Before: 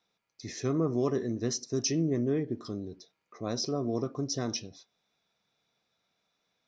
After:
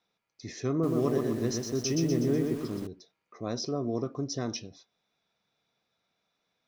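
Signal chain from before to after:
high-shelf EQ 7,700 Hz −9 dB
0:00.71–0:02.87: feedback echo at a low word length 123 ms, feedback 55%, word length 8 bits, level −3.5 dB

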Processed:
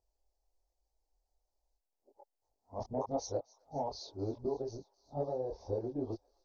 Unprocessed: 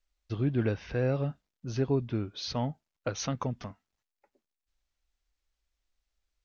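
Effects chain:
played backwards from end to start
gain on a spectral selection 0:05.01–0:05.76, 1,300–3,200 Hz −6 dB
drawn EQ curve 100 Hz 0 dB, 160 Hz −14 dB, 410 Hz +6 dB, 860 Hz +9 dB, 1,400 Hz −22 dB, 2,900 Hz −28 dB, 4,500 Hz −4 dB
harmonic and percussive parts rebalanced percussive +5 dB
downward compressor, threshold −30 dBFS, peak gain reduction 13 dB
multi-voice chorus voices 4, 1.2 Hz, delay 24 ms, depth 3.8 ms
delay with a high-pass on its return 262 ms, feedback 76%, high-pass 1,500 Hz, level −21 dB

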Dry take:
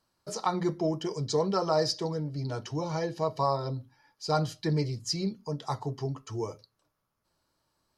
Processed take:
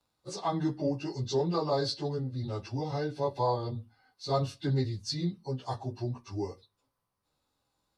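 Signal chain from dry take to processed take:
phase-vocoder pitch shift without resampling −2 semitones

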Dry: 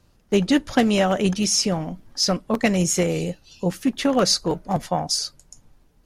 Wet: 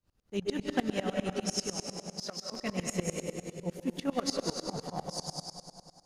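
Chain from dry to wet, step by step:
0:01.76–0:02.52: high-pass filter 490 Hz
convolution reverb RT60 2.5 s, pre-delay 118 ms, DRR 1 dB
tremolo with a ramp in dB swelling 10 Hz, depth 23 dB
level −8.5 dB

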